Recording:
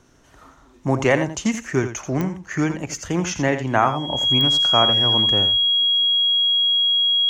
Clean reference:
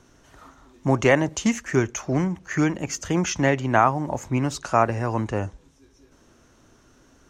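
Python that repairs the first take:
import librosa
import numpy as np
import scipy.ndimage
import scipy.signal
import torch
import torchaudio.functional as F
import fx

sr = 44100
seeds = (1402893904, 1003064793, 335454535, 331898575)

y = fx.fix_declick_ar(x, sr, threshold=10.0)
y = fx.notch(y, sr, hz=3300.0, q=30.0)
y = fx.fix_echo_inverse(y, sr, delay_ms=84, level_db=-10.0)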